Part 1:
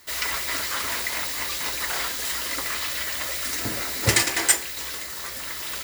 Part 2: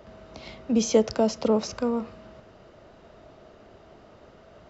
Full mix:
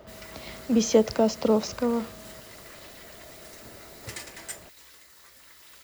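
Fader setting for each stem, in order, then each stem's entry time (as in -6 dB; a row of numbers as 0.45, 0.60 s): -19.5, +0.5 dB; 0.00, 0.00 s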